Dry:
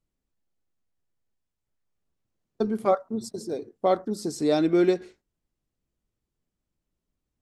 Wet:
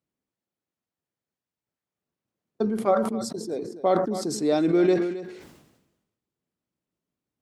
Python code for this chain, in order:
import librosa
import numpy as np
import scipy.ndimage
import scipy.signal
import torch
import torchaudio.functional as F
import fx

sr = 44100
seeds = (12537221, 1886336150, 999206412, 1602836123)

p1 = scipy.signal.sosfilt(scipy.signal.butter(2, 140.0, 'highpass', fs=sr, output='sos'), x)
p2 = fx.high_shelf(p1, sr, hz=4200.0, db=-6.5)
p3 = p2 + fx.echo_single(p2, sr, ms=268, db=-16.5, dry=0)
y = fx.sustainer(p3, sr, db_per_s=55.0)